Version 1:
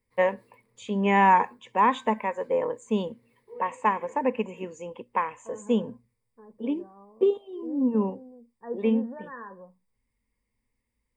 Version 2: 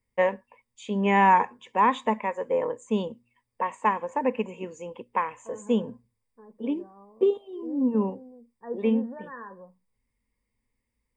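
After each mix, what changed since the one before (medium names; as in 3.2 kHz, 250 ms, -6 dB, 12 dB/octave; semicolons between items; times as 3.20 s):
background: muted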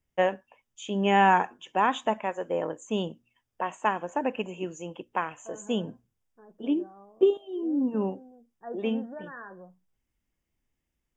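master: remove rippled EQ curve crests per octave 0.94, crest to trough 12 dB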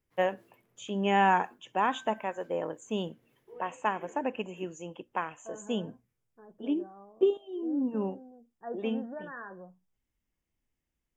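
first voice -3.5 dB; background: unmuted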